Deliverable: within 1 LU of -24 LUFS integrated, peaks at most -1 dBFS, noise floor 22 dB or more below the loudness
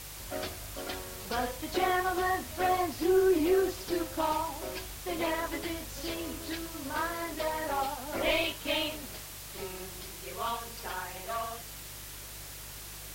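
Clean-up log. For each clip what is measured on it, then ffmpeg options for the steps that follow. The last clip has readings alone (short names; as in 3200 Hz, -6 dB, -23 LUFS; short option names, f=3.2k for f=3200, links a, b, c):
hum 50 Hz; harmonics up to 150 Hz; hum level -48 dBFS; noise floor -45 dBFS; noise floor target -55 dBFS; loudness -32.5 LUFS; peak -15.5 dBFS; loudness target -24.0 LUFS
-> -af "bandreject=f=50:t=h:w=4,bandreject=f=100:t=h:w=4,bandreject=f=150:t=h:w=4"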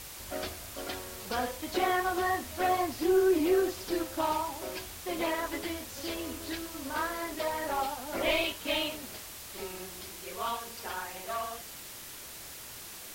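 hum none; noise floor -45 dBFS; noise floor target -55 dBFS
-> -af "afftdn=nr=10:nf=-45"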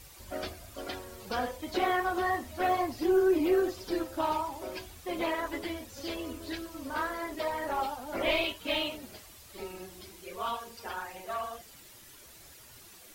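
noise floor -53 dBFS; noise floor target -55 dBFS
-> -af "afftdn=nr=6:nf=-53"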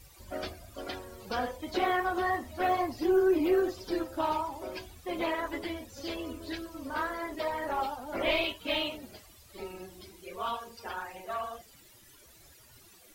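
noise floor -57 dBFS; loudness -32.5 LUFS; peak -16.5 dBFS; loudness target -24.0 LUFS
-> -af "volume=8.5dB"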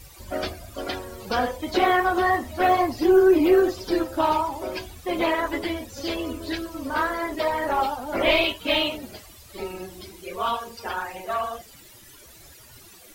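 loudness -24.0 LUFS; peak -8.0 dBFS; noise floor -49 dBFS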